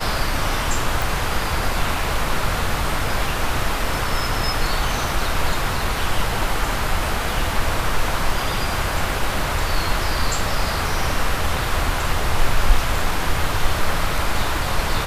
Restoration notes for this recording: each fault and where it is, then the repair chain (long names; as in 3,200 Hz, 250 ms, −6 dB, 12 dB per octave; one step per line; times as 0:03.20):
0:01.02: click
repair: click removal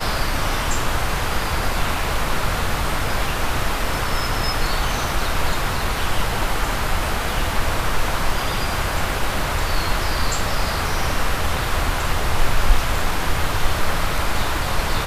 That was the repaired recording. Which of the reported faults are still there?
none of them is left